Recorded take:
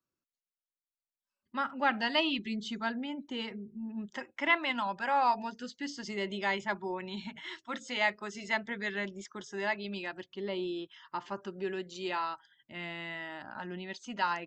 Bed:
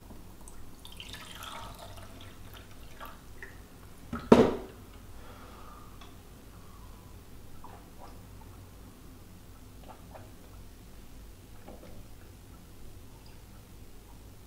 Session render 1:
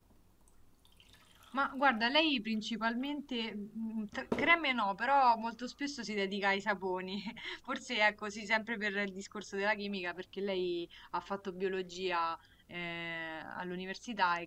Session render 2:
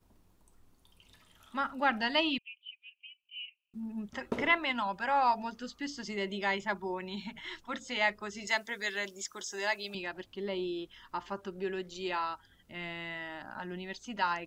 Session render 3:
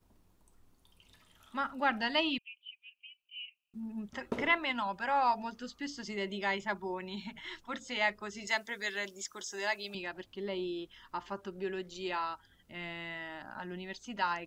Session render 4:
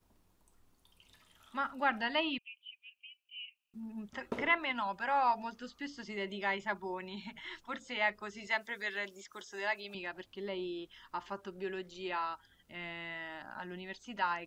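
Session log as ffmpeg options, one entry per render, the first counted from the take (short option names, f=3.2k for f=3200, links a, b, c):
-filter_complex "[1:a]volume=-17dB[a];[0:a][a]amix=inputs=2:normalize=0"
-filter_complex "[0:a]asettb=1/sr,asplit=3[a][b][c];[a]atrim=end=2.384[d];[b]atrim=start=2.38:end=3.74,asetpts=PTS-STARTPTS,afade=t=in:d=0.004:c=qsin,afade=t=out:st=1.356:d=0.004:c=qsin,asuperpass=centerf=2700:order=8:qfactor=4[e];[c]atrim=start=3.736[f];[d][e]acrossfade=d=0.004:c1=hsin:c2=qsin[g];[g][f]acrossfade=d=0.004:c1=qsin:c2=hsin,asettb=1/sr,asplit=3[h][i][j];[h]atrim=end=8.474[k];[i]atrim=start=8.47:end=9.95,asetpts=PTS-STARTPTS,afade=t=in:d=0.004:c=qsin,afade=t=out:st=1.476:d=0.004:c=qsin,bass=f=250:g=-14,treble=f=4k:g=13[l];[j]atrim=start=9.946[m];[k][l]acrossfade=d=0.004:c1=hsin:c2=qsin[n];[n][m]acrossfade=d=0.004:c1=qsin:c2=hsin"
-af "volume=-1.5dB"
-filter_complex "[0:a]acrossover=split=3400[a][b];[b]acompressor=threshold=-56dB:ratio=4:attack=1:release=60[c];[a][c]amix=inputs=2:normalize=0,lowshelf=f=480:g=-4"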